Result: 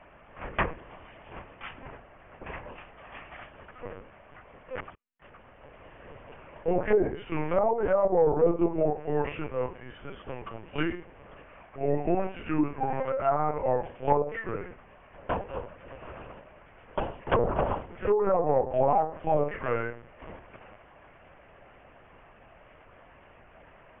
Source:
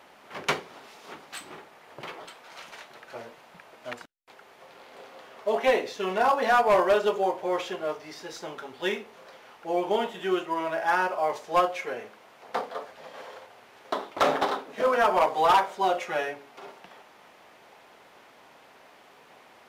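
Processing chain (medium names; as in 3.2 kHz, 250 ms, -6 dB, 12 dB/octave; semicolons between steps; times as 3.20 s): low-pass that closes with the level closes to 840 Hz, closed at -18.5 dBFS; LPC vocoder at 8 kHz pitch kept; tape speed -18%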